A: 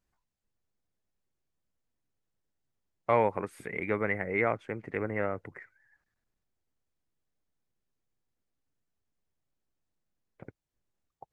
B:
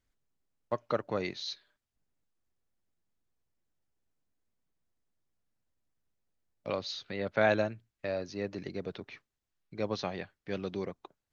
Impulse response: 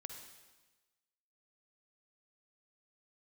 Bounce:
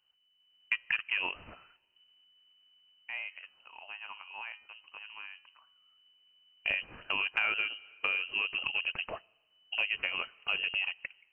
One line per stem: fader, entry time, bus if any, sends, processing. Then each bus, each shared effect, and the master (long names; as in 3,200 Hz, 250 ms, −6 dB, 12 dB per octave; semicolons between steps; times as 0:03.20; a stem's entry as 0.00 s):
−15.0 dB, 0.00 s, no send, hum removal 144.4 Hz, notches 15
+2.0 dB, 0.00 s, send −20 dB, automatic gain control gain up to 8 dB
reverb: on, RT60 1.2 s, pre-delay 45 ms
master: voice inversion scrambler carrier 3,000 Hz; downward compressor 5 to 1, threshold −29 dBFS, peak gain reduction 16.5 dB